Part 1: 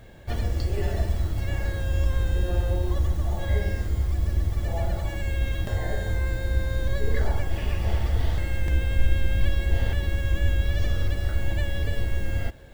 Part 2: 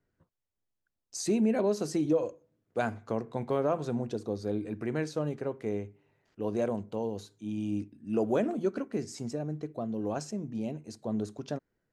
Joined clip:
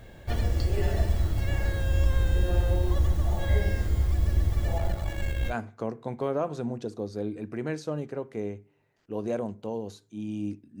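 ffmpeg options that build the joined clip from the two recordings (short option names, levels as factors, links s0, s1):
-filter_complex "[0:a]asettb=1/sr,asplit=3[s0][s1][s2];[s0]atrim=end=4.784[s3];[s1]atrim=start=4.78:end=5.55,asetpts=PTS-STARTPTS,afade=t=in:d=0.004:c=qsin,afade=t=out:st=0.766:d=0.004:c=qsin,aeval=exprs='if(lt(val(0),0),0.447*val(0),val(0))':c=same[s4];[s2]atrim=start=5.546[s5];[s3][s4]acrossfade=d=0.004:c1=hsin:c2=qsin[s6];[s6][s5]acrossfade=d=0.004:c1=qsin:c2=hsin,apad=whole_dur=10.8,atrim=end=10.8,atrim=end=5.55,asetpts=PTS-STARTPTS[s7];[1:a]atrim=start=2.76:end=8.09,asetpts=PTS-STARTPTS[s8];[s7][s8]acrossfade=d=0.08:c1=tri:c2=tri"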